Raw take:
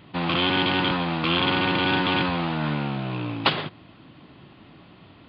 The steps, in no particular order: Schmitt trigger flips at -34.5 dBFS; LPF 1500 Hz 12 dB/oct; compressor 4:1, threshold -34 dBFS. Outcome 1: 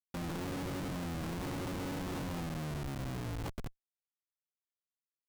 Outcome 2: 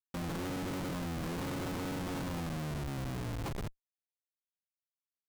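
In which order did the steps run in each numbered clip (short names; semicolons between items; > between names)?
compressor > LPF > Schmitt trigger; LPF > compressor > Schmitt trigger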